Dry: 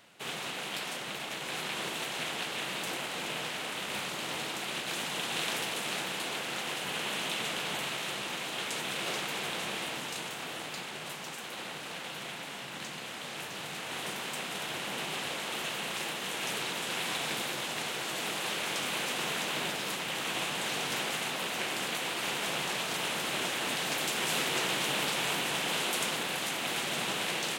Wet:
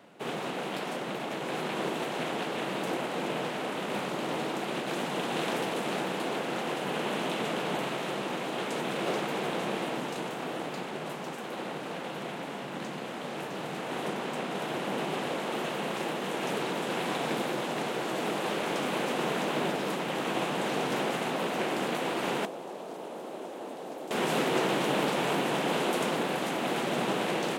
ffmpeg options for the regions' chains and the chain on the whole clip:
-filter_complex "[0:a]asettb=1/sr,asplit=3[a][b][c];[a]atrim=end=14.084[d];[b]atrim=start=14.08:end=14.58,asetpts=PTS-STARTPTS,afade=t=in:d=0.004:c=qsin,afade=t=out:st=0.496:d=0.004:c=qsin,acrusher=bits=7:mode=log:mix=0:aa=0.000001,highshelf=f=11k:g=-7[e];[c]atrim=start=14.576[f];[d][e]acrossfade=d=0.004:c1=hsin:c2=qsin[g];[g][f]acrossfade=d=0.004:c1=qsin:c2=hsin,asettb=1/sr,asplit=3[h][i][j];[h]atrim=end=22.454[k];[i]atrim=start=22.45:end=24.11,asetpts=PTS-STARTPTS,afade=t=in:d=0.004:c=qsin,afade=t=out:st=1.656:d=0.004:c=qsin,highpass=240,equalizer=f=2k:t=o:w=2.2:g=-6.5,acrossover=split=460|920[l][m][n];[l]acompressor=threshold=-56dB:ratio=4[o];[m]acompressor=threshold=-49dB:ratio=4[p];[n]acompressor=threshold=-51dB:ratio=4[q];[o][p][q]amix=inputs=3:normalize=0[r];[j]atrim=start=24.106[s];[k][r]acrossfade=d=0.004:c1=hsin:c2=qsin[t];[t][s]acrossfade=d=0.004:c1=qsin:c2=hsin,highpass=190,tiltshelf=f=1.3k:g=9.5,volume=2.5dB"

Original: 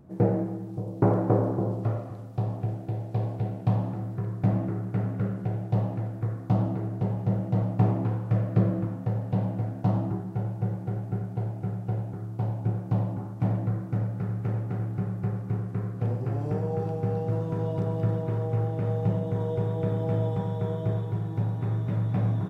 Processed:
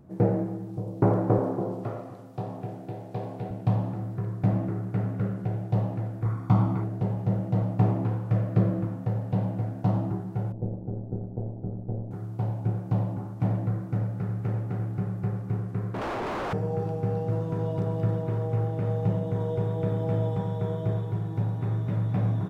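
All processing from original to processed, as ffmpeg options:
-filter_complex "[0:a]asettb=1/sr,asplit=3[a][b][c];[a]atrim=end=1.384[d];[b]atrim=start=1.38:end=3.51,asetpts=PTS-STARTPTS,afade=t=in:d=0.004:c=qsin,afade=t=out:st=2.126:d=0.004:c=qsin,highpass=160,asplit=2[e][f];[f]adelay=23,volume=-11dB[g];[e][g]amix=inputs=2:normalize=0,atrim=end_sample=93933[h];[c]atrim=start=3.506[i];[d][h]acrossfade=d=0.004:c1=hsin:c2=qsin[j];[j][i]acrossfade=d=0.004:c1=qsin:c2=hsin,asettb=1/sr,asplit=3[k][l][m];[k]atrim=end=6.254[n];[l]atrim=start=6.25:end=6.84,asetpts=PTS-STARTPTS,afade=t=in:d=0.004:c=qsin,afade=t=out:st=0.586:d=0.004:c=qsin,equalizer=f=1.3k:w=0.89:g=6.5,aecho=1:1:0.9:0.49,atrim=end_sample=26019[o];[m]atrim=start=6.836[p];[n][o]acrossfade=d=0.004:c1=hsin:c2=qsin[q];[q][p]acrossfade=d=0.004:c1=qsin:c2=hsin,asettb=1/sr,asplit=3[r][s][t];[r]atrim=end=10.524[u];[s]atrim=start=10.52:end=12.11,asetpts=PTS-STARTPTS,afade=t=in:d=0.004:c=qsin,afade=t=out:st=1.586:d=0.004:c=qsin,lowpass=f=510:t=q:w=1.6,tremolo=f=120:d=0.71[v];[t]atrim=start=12.106[w];[u][v]acrossfade=d=0.004:c1=hsin:c2=qsin[x];[x][w]acrossfade=d=0.004:c1=qsin:c2=hsin,asettb=1/sr,asplit=3[y][z][aa];[y]atrim=end=15.944[ab];[z]atrim=start=15.94:end=16.53,asetpts=PTS-STARTPTS,afade=t=in:d=0.004:c=qsin,afade=t=out:st=0.586:d=0.004:c=qsin,bandreject=f=60:t=h:w=6,bandreject=f=120:t=h:w=6,bandreject=f=180:t=h:w=6,bandreject=f=240:t=h:w=6,bandreject=f=300:t=h:w=6,bandreject=f=360:t=h:w=6,bandreject=f=420:t=h:w=6,bandreject=f=480:t=h:w=6,aeval=exprs='0.02*(abs(mod(val(0)/0.02+3,4)-2)-1)':c=same,asplit=2[ac][ad];[ad]highpass=f=720:p=1,volume=37dB,asoftclip=type=tanh:threshold=-23.5dB[ae];[ac][ae]amix=inputs=2:normalize=0,lowpass=f=1.4k:p=1,volume=-6dB[af];[aa]atrim=start=16.526[ag];[ab][af]acrossfade=d=0.004:c1=hsin:c2=qsin[ah];[ah][ag]acrossfade=d=0.004:c1=qsin:c2=hsin"

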